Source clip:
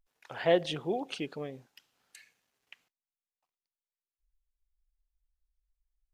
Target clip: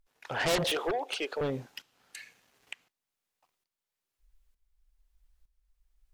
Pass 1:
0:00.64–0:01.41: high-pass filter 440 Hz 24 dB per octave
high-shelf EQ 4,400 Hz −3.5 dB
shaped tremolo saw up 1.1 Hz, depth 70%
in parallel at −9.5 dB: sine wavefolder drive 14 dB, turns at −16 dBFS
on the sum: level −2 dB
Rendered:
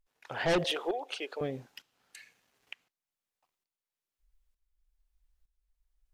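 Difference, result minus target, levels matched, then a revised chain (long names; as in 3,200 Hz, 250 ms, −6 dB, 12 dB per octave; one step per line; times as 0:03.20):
sine wavefolder: distortion −4 dB
0:00.64–0:01.41: high-pass filter 440 Hz 24 dB per octave
high-shelf EQ 4,400 Hz −3.5 dB
shaped tremolo saw up 1.1 Hz, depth 70%
in parallel at −9.5 dB: sine wavefolder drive 21 dB, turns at −16 dBFS
on the sum: level −2 dB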